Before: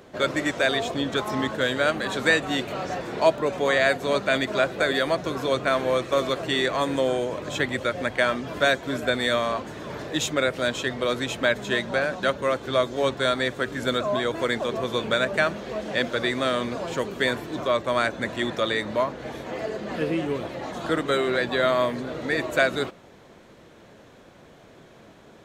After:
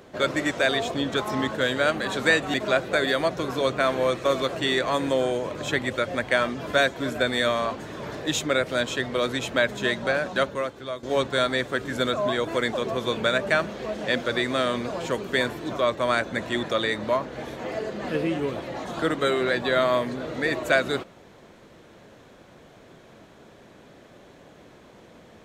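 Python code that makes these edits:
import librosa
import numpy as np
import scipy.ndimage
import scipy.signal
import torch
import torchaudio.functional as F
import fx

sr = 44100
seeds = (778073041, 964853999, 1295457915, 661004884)

y = fx.edit(x, sr, fx.cut(start_s=2.54, length_s=1.87),
    fx.fade_out_to(start_s=12.3, length_s=0.6, curve='qua', floor_db=-11.5), tone=tone)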